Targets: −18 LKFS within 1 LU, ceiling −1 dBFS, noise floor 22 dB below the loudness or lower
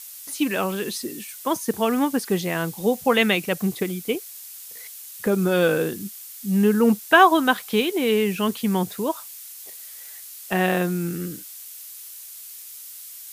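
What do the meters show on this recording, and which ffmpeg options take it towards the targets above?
background noise floor −40 dBFS; target noise floor −45 dBFS; integrated loudness −22.5 LKFS; sample peak −1.5 dBFS; target loudness −18.0 LKFS
→ -af "afftdn=noise_reduction=6:noise_floor=-40"
-af "volume=4.5dB,alimiter=limit=-1dB:level=0:latency=1"

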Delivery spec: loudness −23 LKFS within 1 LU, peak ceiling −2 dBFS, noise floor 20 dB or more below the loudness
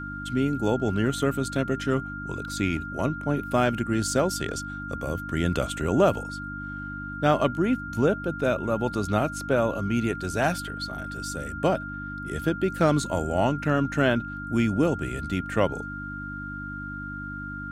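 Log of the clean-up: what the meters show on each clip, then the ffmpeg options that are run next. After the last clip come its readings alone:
mains hum 50 Hz; hum harmonics up to 300 Hz; level of the hum −35 dBFS; interfering tone 1,400 Hz; level of the tone −35 dBFS; integrated loudness −27.0 LKFS; sample peak −8.0 dBFS; target loudness −23.0 LKFS
→ -af "bandreject=frequency=50:width_type=h:width=4,bandreject=frequency=100:width_type=h:width=4,bandreject=frequency=150:width_type=h:width=4,bandreject=frequency=200:width_type=h:width=4,bandreject=frequency=250:width_type=h:width=4,bandreject=frequency=300:width_type=h:width=4"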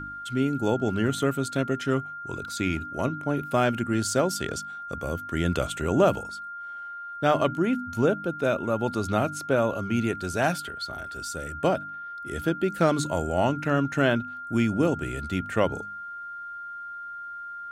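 mains hum none found; interfering tone 1,400 Hz; level of the tone −35 dBFS
→ -af "bandreject=frequency=1400:width=30"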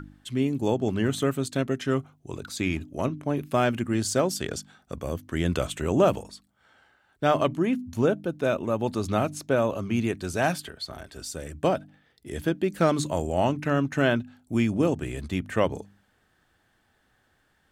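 interfering tone none found; integrated loudness −27.0 LKFS; sample peak −8.0 dBFS; target loudness −23.0 LKFS
→ -af "volume=4dB"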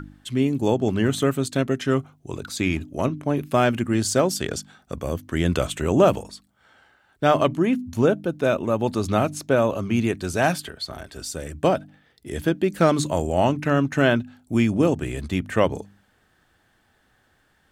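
integrated loudness −23.0 LKFS; sample peak −4.0 dBFS; background noise floor −64 dBFS

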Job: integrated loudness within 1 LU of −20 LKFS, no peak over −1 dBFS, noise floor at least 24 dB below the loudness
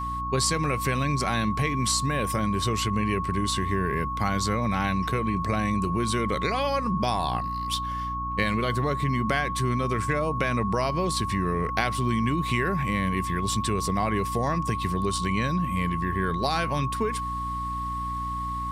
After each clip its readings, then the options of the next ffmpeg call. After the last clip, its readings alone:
mains hum 60 Hz; hum harmonics up to 300 Hz; level of the hum −32 dBFS; interfering tone 1,100 Hz; level of the tone −29 dBFS; integrated loudness −26.5 LKFS; sample peak −6.5 dBFS; target loudness −20.0 LKFS
→ -af "bandreject=frequency=60:width_type=h:width=6,bandreject=frequency=120:width_type=h:width=6,bandreject=frequency=180:width_type=h:width=6,bandreject=frequency=240:width_type=h:width=6,bandreject=frequency=300:width_type=h:width=6"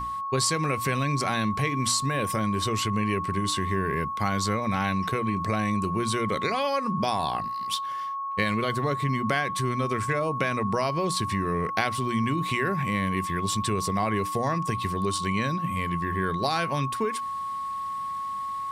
mains hum none found; interfering tone 1,100 Hz; level of the tone −29 dBFS
→ -af "bandreject=frequency=1100:width=30"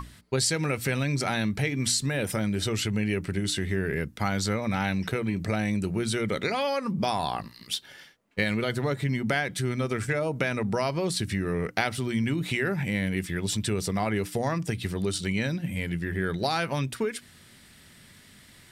interfering tone none found; integrated loudness −28.0 LKFS; sample peak −7.0 dBFS; target loudness −20.0 LKFS
→ -af "volume=8dB,alimiter=limit=-1dB:level=0:latency=1"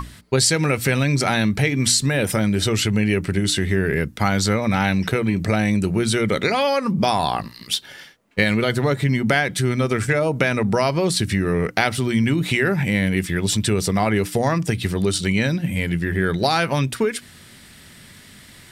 integrated loudness −20.5 LKFS; sample peak −1.0 dBFS; background noise floor −46 dBFS

